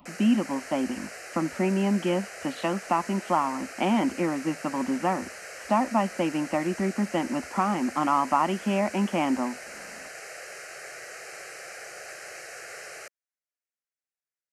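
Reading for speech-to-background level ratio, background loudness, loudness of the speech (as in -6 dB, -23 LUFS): 13.0 dB, -40.0 LUFS, -27.0 LUFS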